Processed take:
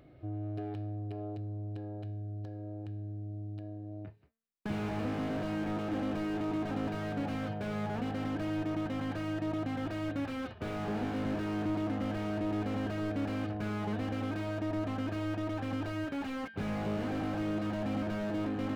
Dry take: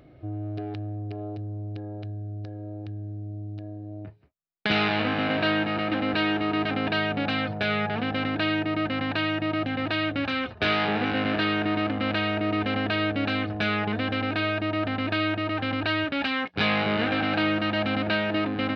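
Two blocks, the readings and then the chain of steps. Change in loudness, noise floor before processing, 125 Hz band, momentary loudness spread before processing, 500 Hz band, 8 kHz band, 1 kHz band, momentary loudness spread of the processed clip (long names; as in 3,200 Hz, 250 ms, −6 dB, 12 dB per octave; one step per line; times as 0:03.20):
−9.5 dB, −41 dBFS, −5.0 dB, 12 LU, −8.5 dB, can't be measured, −11.5 dB, 7 LU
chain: hum removal 225.2 Hz, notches 37
slew-rate limiting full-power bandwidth 21 Hz
level −5 dB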